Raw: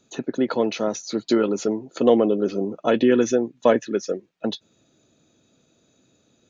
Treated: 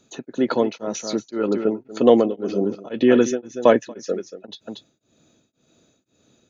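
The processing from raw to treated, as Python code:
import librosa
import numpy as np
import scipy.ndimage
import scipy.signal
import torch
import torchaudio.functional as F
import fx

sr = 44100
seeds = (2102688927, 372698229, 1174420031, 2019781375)

p1 = fx.lowpass(x, sr, hz=fx.line((1.29, 3100.0), (1.69, 2000.0)), slope=24, at=(1.29, 1.69), fade=0.02)
p2 = p1 + fx.echo_single(p1, sr, ms=235, db=-11.5, dry=0)
p3 = p2 * np.abs(np.cos(np.pi * 1.9 * np.arange(len(p2)) / sr))
y = p3 * 10.0 ** (3.0 / 20.0)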